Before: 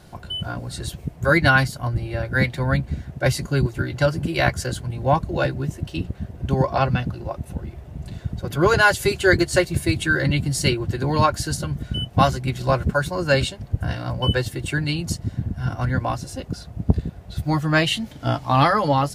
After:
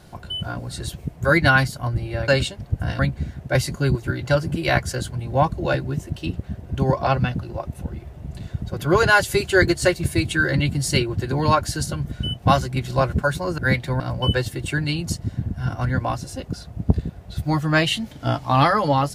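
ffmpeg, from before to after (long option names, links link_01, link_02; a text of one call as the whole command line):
ffmpeg -i in.wav -filter_complex "[0:a]asplit=5[link_01][link_02][link_03][link_04][link_05];[link_01]atrim=end=2.282[link_06];[link_02]atrim=start=13.288:end=14.002[link_07];[link_03]atrim=start=2.698:end=13.292[link_08];[link_04]atrim=start=2.278:end=2.702[link_09];[link_05]atrim=start=13.998[link_10];[link_06][link_07]acrossfade=duration=0.004:curve1=hsin:curve2=hsin[link_11];[link_11][link_08]acrossfade=duration=0.004:curve1=hsin:curve2=hsin[link_12];[link_12][link_09]acrossfade=duration=0.004:curve1=hsin:curve2=hsin[link_13];[link_13][link_10]acrossfade=duration=0.004:curve1=hsin:curve2=hsin" out.wav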